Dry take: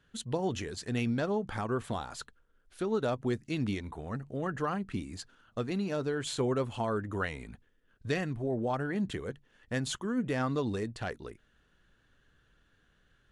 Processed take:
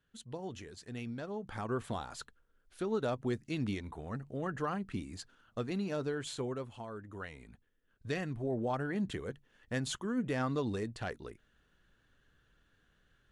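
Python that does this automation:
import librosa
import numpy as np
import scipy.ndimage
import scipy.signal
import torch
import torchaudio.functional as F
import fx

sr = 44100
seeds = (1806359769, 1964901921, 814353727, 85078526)

y = fx.gain(x, sr, db=fx.line((1.27, -10.5), (1.71, -3.0), (6.08, -3.0), (6.89, -13.0), (8.46, -2.5)))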